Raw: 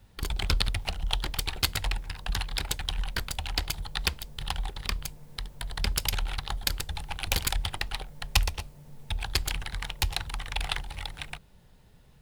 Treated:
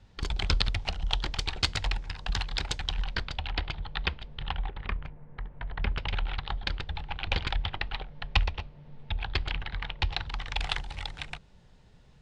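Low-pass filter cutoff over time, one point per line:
low-pass filter 24 dB per octave
0:02.79 6,600 Hz
0:03.62 3,500 Hz
0:04.34 3,500 Hz
0:05.32 1,900 Hz
0:06.32 3,700 Hz
0:09.98 3,700 Hz
0:10.69 7,400 Hz

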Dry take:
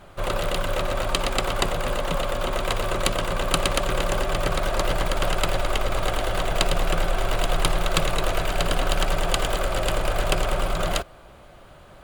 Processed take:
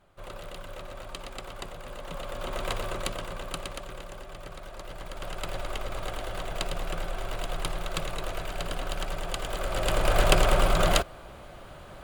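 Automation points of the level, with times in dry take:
0:01.87 −16 dB
0:02.68 −6 dB
0:04.13 −18.5 dB
0:04.85 −18.5 dB
0:05.58 −10 dB
0:09.42 −10 dB
0:10.19 +2 dB

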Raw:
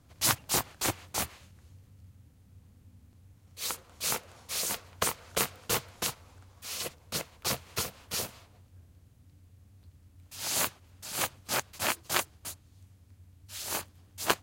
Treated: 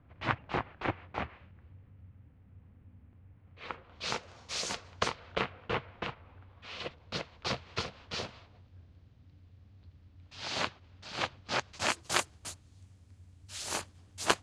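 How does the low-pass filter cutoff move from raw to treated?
low-pass filter 24 dB per octave
0:03.74 2,500 Hz
0:04.23 6,300 Hz
0:04.91 6,300 Hz
0:05.51 2,800 Hz
0:06.32 2,800 Hz
0:07.23 4,600 Hz
0:11.47 4,600 Hz
0:12.03 9,100 Hz

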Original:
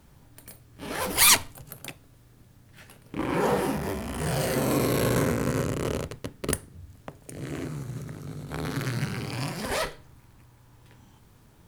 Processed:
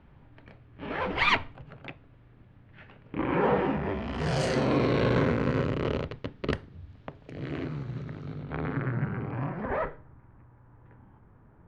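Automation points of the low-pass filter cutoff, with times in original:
low-pass filter 24 dB per octave
0:03.89 2,800 Hz
0:04.44 7,500 Hz
0:04.70 3,800 Hz
0:08.28 3,800 Hz
0:08.92 1,700 Hz

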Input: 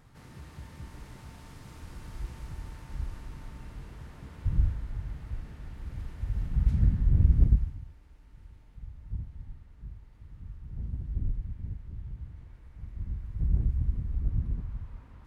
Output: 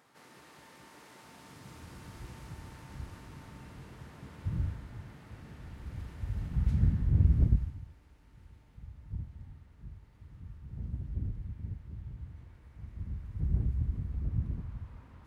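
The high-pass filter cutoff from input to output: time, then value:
0:01.17 350 Hz
0:01.75 97 Hz
0:04.88 97 Hz
0:05.20 200 Hz
0:05.67 64 Hz

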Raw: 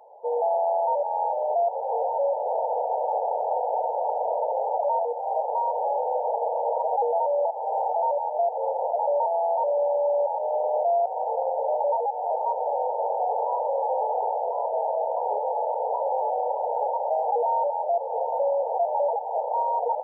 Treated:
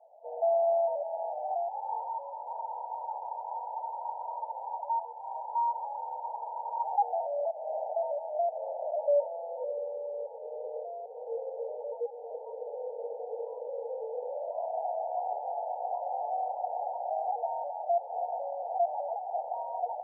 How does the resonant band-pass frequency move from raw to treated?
resonant band-pass, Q 11
0:01.18 660 Hz
0:02.12 970 Hz
0:06.72 970 Hz
0:07.37 640 Hz
0:08.80 640 Hz
0:09.96 460 Hz
0:14.11 460 Hz
0:14.73 720 Hz

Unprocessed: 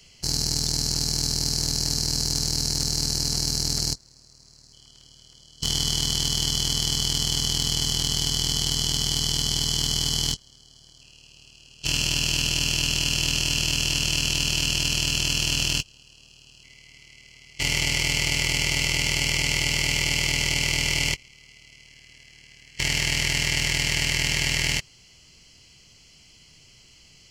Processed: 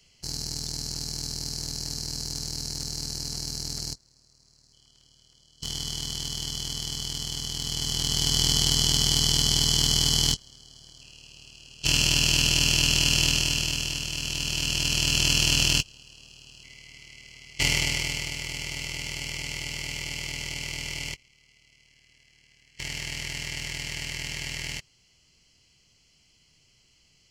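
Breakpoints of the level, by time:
0:07.52 −8 dB
0:08.41 +2 dB
0:13.23 +2 dB
0:14.09 −8 dB
0:15.27 +2 dB
0:17.61 +2 dB
0:18.36 −10 dB

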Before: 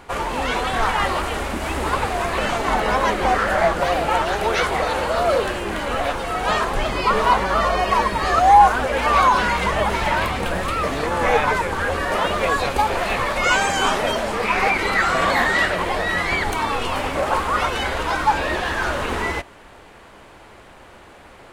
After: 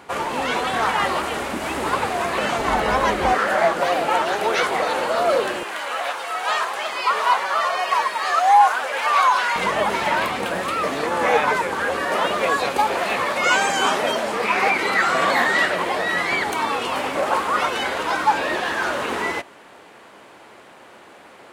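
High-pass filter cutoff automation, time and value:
140 Hz
from 0:02.58 54 Hz
from 0:03.33 220 Hz
from 0:05.63 750 Hz
from 0:09.56 200 Hz

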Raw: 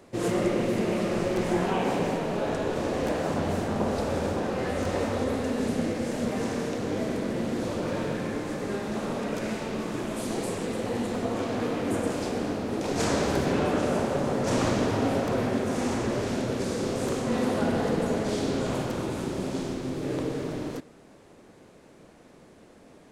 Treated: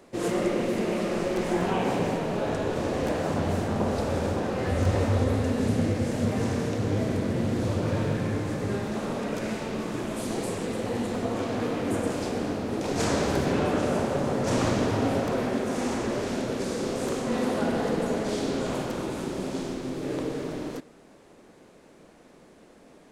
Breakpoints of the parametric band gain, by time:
parametric band 100 Hz 0.99 octaves
−7 dB
from 0:01.61 +4.5 dB
from 0:04.67 +13 dB
from 0:08.87 +2 dB
from 0:15.30 −6 dB

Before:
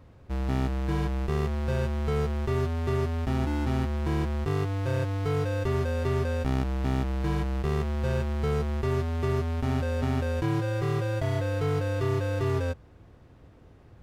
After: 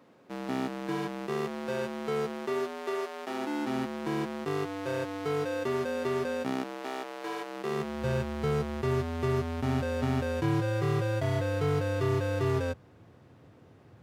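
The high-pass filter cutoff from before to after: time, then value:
high-pass filter 24 dB per octave
0:02.28 200 Hz
0:03.10 430 Hz
0:03.79 180 Hz
0:06.43 180 Hz
0:06.90 390 Hz
0:07.43 390 Hz
0:08.06 100 Hz

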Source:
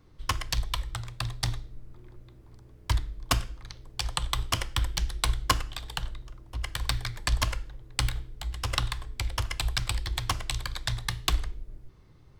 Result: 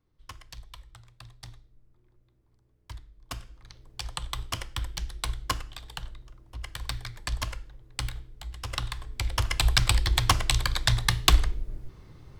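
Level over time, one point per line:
0:03.13 −16 dB
0:03.76 −5 dB
0:08.69 −5 dB
0:09.73 +7 dB

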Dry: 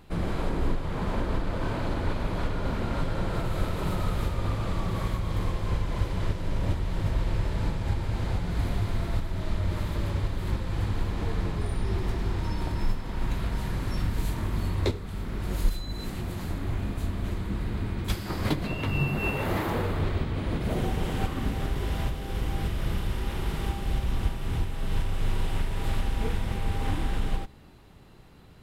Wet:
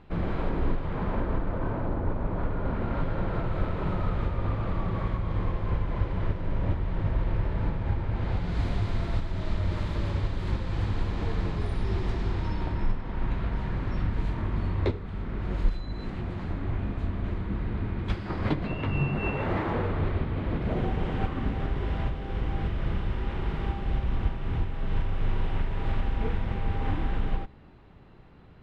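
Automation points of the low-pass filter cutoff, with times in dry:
0:00.82 2,700 Hz
0:02.06 1,100 Hz
0:03.01 2,200 Hz
0:08.12 2,200 Hz
0:08.57 5,300 Hz
0:12.23 5,300 Hz
0:12.87 2,500 Hz

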